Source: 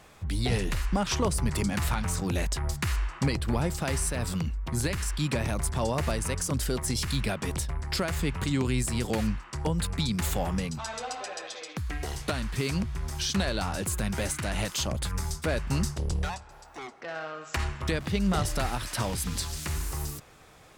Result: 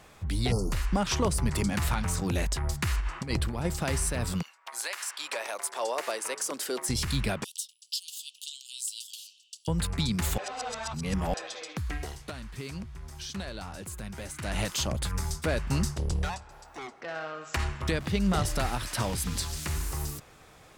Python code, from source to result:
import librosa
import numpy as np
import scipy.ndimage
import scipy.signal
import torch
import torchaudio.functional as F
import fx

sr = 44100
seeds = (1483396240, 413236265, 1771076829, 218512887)

y = fx.spec_erase(x, sr, start_s=0.52, length_s=0.2, low_hz=1400.0, high_hz=4300.0)
y = fx.over_compress(y, sr, threshold_db=-29.0, ratio=-0.5, at=(3.0, 3.65))
y = fx.highpass(y, sr, hz=fx.line((4.41, 790.0), (6.88, 290.0)), slope=24, at=(4.41, 6.88), fade=0.02)
y = fx.steep_highpass(y, sr, hz=2900.0, slope=96, at=(7.44, 9.68))
y = fx.edit(y, sr, fx.reverse_span(start_s=10.38, length_s=0.96),
    fx.fade_down_up(start_s=11.94, length_s=2.62, db=-9.5, fade_s=0.24), tone=tone)